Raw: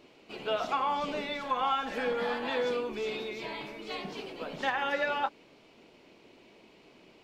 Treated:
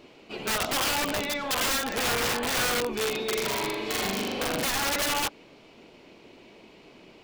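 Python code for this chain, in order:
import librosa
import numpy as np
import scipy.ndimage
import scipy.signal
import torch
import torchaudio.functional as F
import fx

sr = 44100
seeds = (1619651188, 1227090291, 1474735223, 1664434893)

y = fx.low_shelf(x, sr, hz=140.0, db=3.0)
y = fx.room_flutter(y, sr, wall_m=7.0, rt60_s=1.4, at=(3.24, 4.65))
y = (np.mod(10.0 ** (27.0 / 20.0) * y + 1.0, 2.0) - 1.0) / 10.0 ** (27.0 / 20.0)
y = fx.attack_slew(y, sr, db_per_s=380.0)
y = F.gain(torch.from_numpy(y), 5.5).numpy()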